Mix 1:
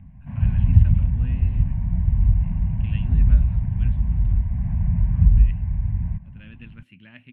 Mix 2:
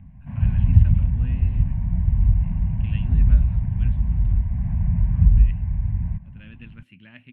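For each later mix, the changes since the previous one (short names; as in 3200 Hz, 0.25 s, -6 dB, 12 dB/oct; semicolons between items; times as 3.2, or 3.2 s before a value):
none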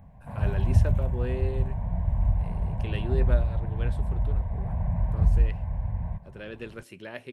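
background -6.5 dB; master: remove EQ curve 260 Hz 0 dB, 390 Hz -24 dB, 2800 Hz -1 dB, 5000 Hz -24 dB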